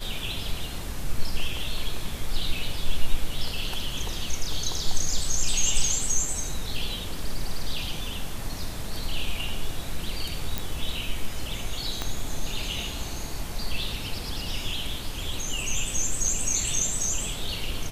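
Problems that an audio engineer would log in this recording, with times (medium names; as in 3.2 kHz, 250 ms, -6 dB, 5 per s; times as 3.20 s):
10.58 s: pop
12.02 s: pop -13 dBFS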